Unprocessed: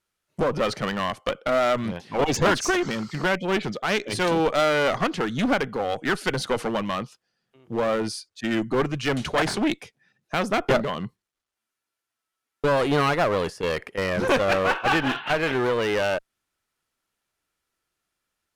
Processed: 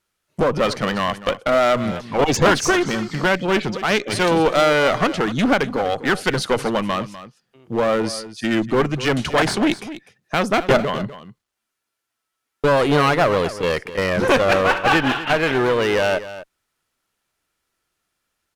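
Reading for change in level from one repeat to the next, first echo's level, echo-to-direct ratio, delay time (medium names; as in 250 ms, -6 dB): no regular repeats, -14.5 dB, -14.5 dB, 249 ms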